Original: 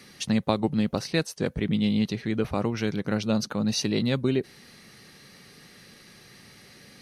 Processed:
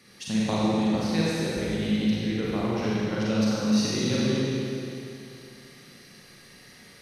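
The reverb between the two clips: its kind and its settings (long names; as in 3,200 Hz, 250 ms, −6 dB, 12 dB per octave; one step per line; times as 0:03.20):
four-comb reverb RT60 2.7 s, combs from 33 ms, DRR −7.5 dB
level −7.5 dB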